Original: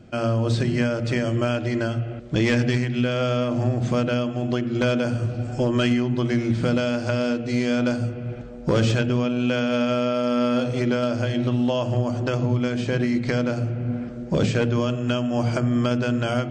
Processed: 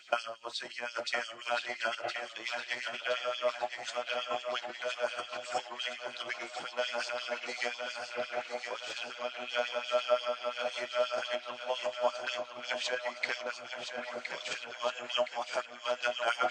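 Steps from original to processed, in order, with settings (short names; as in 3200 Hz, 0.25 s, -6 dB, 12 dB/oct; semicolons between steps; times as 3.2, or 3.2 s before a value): limiter -19 dBFS, peak gain reduction 6 dB; negative-ratio compressor -30 dBFS, ratio -0.5; resonator 56 Hz, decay 0.24 s, harmonics odd, mix 60%; LFO high-pass sine 5.7 Hz 710–4000 Hz; on a send: thinning echo 1.016 s, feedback 53%, high-pass 530 Hz, level -6.5 dB; on the sum: gain +6 dB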